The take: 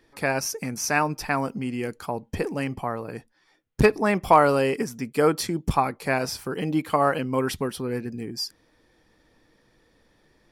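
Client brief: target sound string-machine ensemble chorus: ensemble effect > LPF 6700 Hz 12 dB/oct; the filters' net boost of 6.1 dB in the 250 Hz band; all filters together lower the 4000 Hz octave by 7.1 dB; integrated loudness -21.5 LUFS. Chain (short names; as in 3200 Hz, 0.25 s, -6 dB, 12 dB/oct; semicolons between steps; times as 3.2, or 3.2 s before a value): bell 250 Hz +7.5 dB; bell 4000 Hz -9 dB; ensemble effect; LPF 6700 Hz 12 dB/oct; gain +4.5 dB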